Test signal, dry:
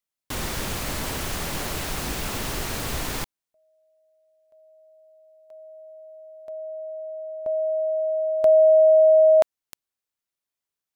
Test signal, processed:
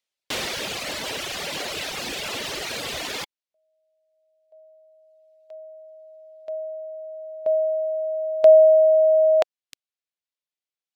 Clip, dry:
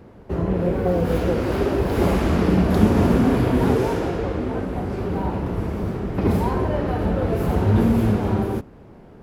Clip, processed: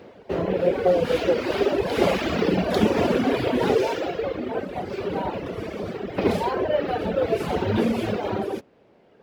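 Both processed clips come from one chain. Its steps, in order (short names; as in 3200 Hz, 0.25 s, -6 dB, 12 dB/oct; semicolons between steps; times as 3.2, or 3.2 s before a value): weighting filter D; reverb removal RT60 1.9 s; bell 570 Hz +9 dB 1.3 oct; decimation joined by straight lines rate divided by 2×; gain -2.5 dB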